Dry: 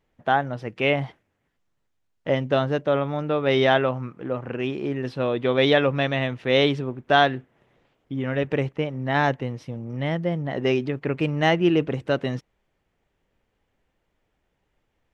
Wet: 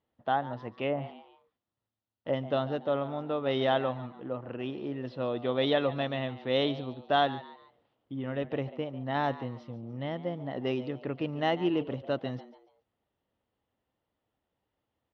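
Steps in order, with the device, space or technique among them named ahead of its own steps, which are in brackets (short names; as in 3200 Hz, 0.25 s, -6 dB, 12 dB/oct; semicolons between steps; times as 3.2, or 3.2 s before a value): frequency-shifting delay pedal into a guitar cabinet (frequency-shifting echo 0.143 s, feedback 35%, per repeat +110 Hz, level -16.5 dB; speaker cabinet 85–4500 Hz, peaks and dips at 160 Hz -7 dB, 400 Hz -4 dB, 1600 Hz -6 dB, 2300 Hz -9 dB); 0.64–2.33 treble ducked by the level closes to 560 Hz, closed at -16.5 dBFS; gain -6.5 dB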